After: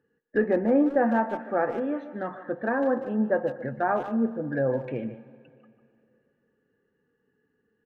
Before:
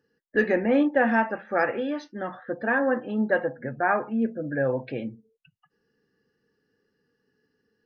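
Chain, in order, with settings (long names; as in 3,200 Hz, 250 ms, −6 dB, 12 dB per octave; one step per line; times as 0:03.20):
adaptive Wiener filter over 9 samples
treble cut that deepens with the level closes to 1,100 Hz, closed at −22.5 dBFS
far-end echo of a speakerphone 150 ms, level −12 dB
dense smooth reverb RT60 2.5 s, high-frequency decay 0.9×, pre-delay 110 ms, DRR 18 dB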